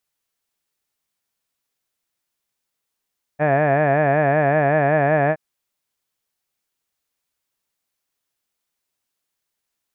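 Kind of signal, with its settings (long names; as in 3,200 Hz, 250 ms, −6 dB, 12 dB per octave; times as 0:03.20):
vowel by formant synthesis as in had, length 1.97 s, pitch 144 Hz, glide +0.5 semitones, vibrato depth 1.1 semitones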